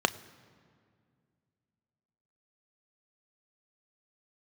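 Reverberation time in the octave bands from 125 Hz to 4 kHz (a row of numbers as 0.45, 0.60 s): 3.0, 2.9, 2.3, 2.0, 1.8, 1.4 s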